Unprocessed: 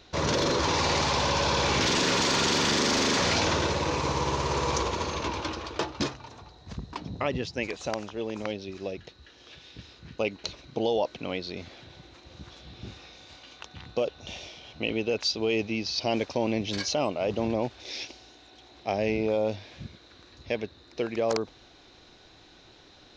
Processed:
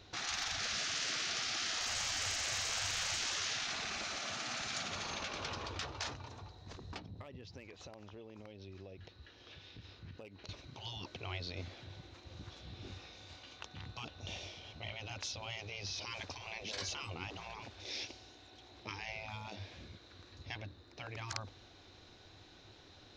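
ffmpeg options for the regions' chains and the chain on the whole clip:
ffmpeg -i in.wav -filter_complex "[0:a]asettb=1/sr,asplit=3[link_01][link_02][link_03];[link_01]atrim=end=6.994[link_04];[link_02]atrim=start=6.99:end=10.49,asetpts=PTS-STARTPTS,afade=type=in:duration=0.004:curve=qsin,afade=type=out:start_time=3.496:duration=0.004:curve=qsin,lowpass=5200,asoftclip=type=hard:threshold=-19dB,acompressor=threshold=-44dB:ratio=6:attack=3.2:release=140:knee=1:detection=peak[link_05];[link_03]atrim=start=10.486[link_06];[link_04][link_05]acrossfade=duration=0.004:curve1=hsin:curve2=qsin[link_07];[link_07][link_06]acrossfade=duration=0.004:curve1=qsin:curve2=hsin,asettb=1/sr,asplit=3[link_08][link_09][link_10];[link_08]atrim=end=20.574[link_11];[link_09]atrim=start=20.57:end=21.18,asetpts=PTS-STARTPTS,afade=type=in:duration=0.004:curve=qsin,afade=type=out:start_time=0.606:duration=0.004:curve=qsin,lowpass=frequency=1800:poles=1,aemphasis=mode=production:type=50fm,bandreject=frequency=60:width_type=h:width=6,bandreject=frequency=120:width_type=h:width=6,bandreject=frequency=180:width_type=h:width=6,bandreject=frequency=240:width_type=h:width=6,bandreject=frequency=300:width_type=h:width=6[link_12];[link_10]atrim=start=21.176[link_13];[link_11][link_12]acrossfade=duration=0.004:curve1=hsin:curve2=qsin[link_14];[link_14][link_13]acrossfade=duration=0.004:curve1=qsin:curve2=hsin,afftfilt=real='re*lt(hypot(re,im),0.0708)':imag='im*lt(hypot(re,im),0.0708)':win_size=1024:overlap=0.75,equalizer=frequency=95:width=3.8:gain=11.5,volume=-5dB" out.wav

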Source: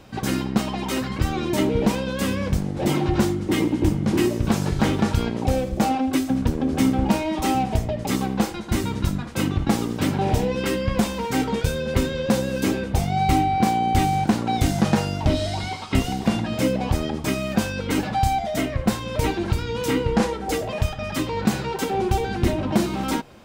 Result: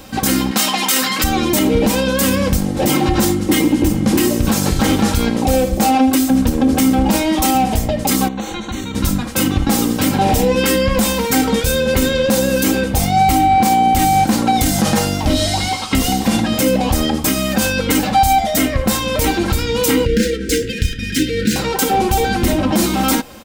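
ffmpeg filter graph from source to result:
ffmpeg -i in.wav -filter_complex "[0:a]asettb=1/sr,asplit=3[link_01][link_02][link_03];[link_01]atrim=end=0.514[link_04];[link_02]atrim=start=0.51:end=1.24,asetpts=PTS-STARTPTS,afade=type=in:duration=0.004:curve=qsin,afade=type=out:start_time=0.726:duration=0.004:curve=qsin,highpass=frequency=150:width=0.5412,highpass=frequency=150:width=1.3066,tiltshelf=frequency=720:gain=-7[link_05];[link_03]atrim=start=1.236[link_06];[link_04][link_05]acrossfade=duration=0.004:curve1=hsin:curve2=qsin[link_07];[link_07][link_06]acrossfade=duration=0.004:curve1=qsin:curve2=hsin,asettb=1/sr,asplit=3[link_08][link_09][link_10];[link_08]atrim=end=8.284[link_11];[link_09]atrim=start=8.28:end=8.95,asetpts=PTS-STARTPTS,afade=type=in:duration=0.004:curve=qsin,afade=type=out:start_time=0.666:duration=0.004:curve=qsin,highshelf=frequency=7800:width_type=q:width=1.5:gain=-13,acompressor=threshold=-29dB:ratio=8:attack=3.2:release=140:knee=1:detection=peak,asuperstop=centerf=5000:order=4:qfactor=3.2[link_12];[link_10]atrim=start=8.946[link_13];[link_11][link_12]acrossfade=duration=0.004:curve1=hsin:curve2=qsin[link_14];[link_14][link_13]acrossfade=duration=0.004:curve1=qsin:curve2=hsin,asettb=1/sr,asplit=3[link_15][link_16][link_17];[link_15]atrim=end=20.054[link_18];[link_16]atrim=start=20.05:end=21.56,asetpts=PTS-STARTPTS,afade=type=in:duration=0.004:curve=qsin,afade=type=out:start_time=1.506:duration=0.004:curve=qsin,adynamicsmooth=sensitivity=7.5:basefreq=4400,asuperstop=centerf=850:order=20:qfactor=0.89[link_19];[link_17]atrim=start=21.556[link_20];[link_18][link_19]acrossfade=duration=0.004:curve1=hsin:curve2=qsin[link_21];[link_21][link_20]acrossfade=duration=0.004:curve1=qsin:curve2=hsin,aemphasis=mode=production:type=50kf,aecho=1:1:3.8:0.43,alimiter=level_in=12dB:limit=-1dB:release=50:level=0:latency=1,volume=-4dB" out.wav

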